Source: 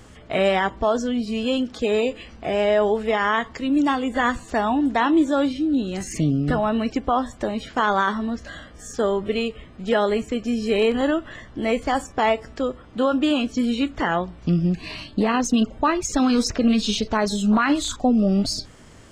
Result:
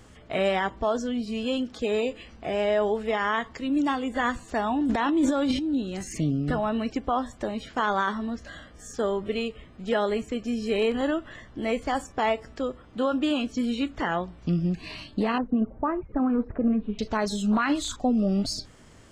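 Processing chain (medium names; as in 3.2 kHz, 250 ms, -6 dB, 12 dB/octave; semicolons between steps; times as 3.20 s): 4.81–5.73 s: transient shaper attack -6 dB, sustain +11 dB; 15.38–16.99 s: Bessel low-pass 1.1 kHz, order 6; trim -5 dB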